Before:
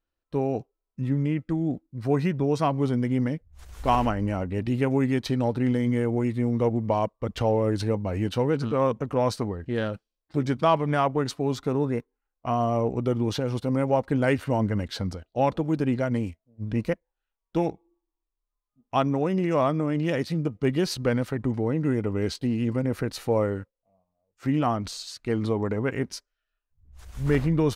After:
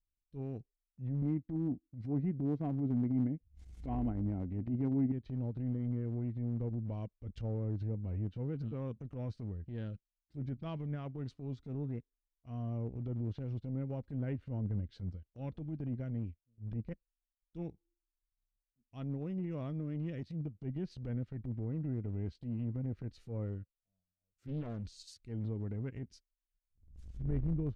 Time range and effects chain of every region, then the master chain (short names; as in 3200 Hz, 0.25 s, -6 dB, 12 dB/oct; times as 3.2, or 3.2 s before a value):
1.22–5.12 HPF 55 Hz 6 dB/oct + small resonant body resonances 280/730/2100 Hz, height 9 dB, ringing for 20 ms
24.47–25.14 high shelf 5200 Hz +5.5 dB + Doppler distortion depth 0.87 ms
whole clip: passive tone stack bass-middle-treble 10-0-1; treble ducked by the level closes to 1300 Hz, closed at -36 dBFS; transient shaper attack -10 dB, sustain -6 dB; gain +5.5 dB